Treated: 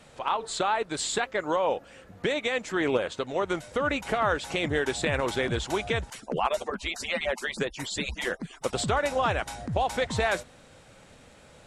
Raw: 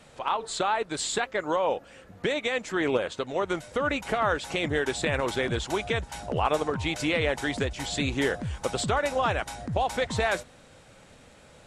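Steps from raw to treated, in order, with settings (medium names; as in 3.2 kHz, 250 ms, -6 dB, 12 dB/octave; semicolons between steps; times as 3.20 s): 6.10–8.73 s: harmonic-percussive separation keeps percussive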